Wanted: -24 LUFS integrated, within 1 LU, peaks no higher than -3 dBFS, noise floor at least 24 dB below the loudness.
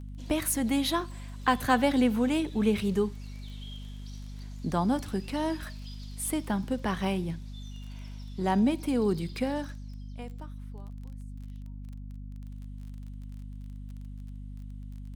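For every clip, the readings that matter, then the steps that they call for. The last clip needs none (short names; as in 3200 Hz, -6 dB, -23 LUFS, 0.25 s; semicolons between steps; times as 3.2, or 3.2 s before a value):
ticks 22/s; hum 50 Hz; harmonics up to 250 Hz; hum level -38 dBFS; loudness -29.0 LUFS; peak -9.0 dBFS; loudness target -24.0 LUFS
-> de-click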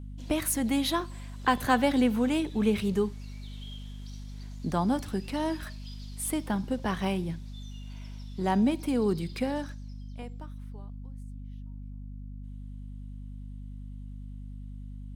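ticks 0/s; hum 50 Hz; harmonics up to 250 Hz; hum level -38 dBFS
-> de-hum 50 Hz, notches 5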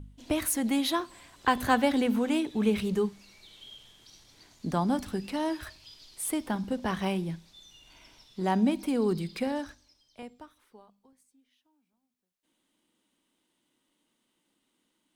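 hum none; loudness -29.5 LUFS; peak -9.5 dBFS; loudness target -24.0 LUFS
-> gain +5.5 dB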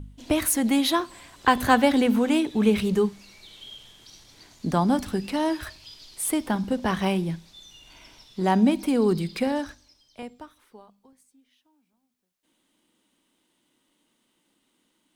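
loudness -24.0 LUFS; peak -4.0 dBFS; noise floor -72 dBFS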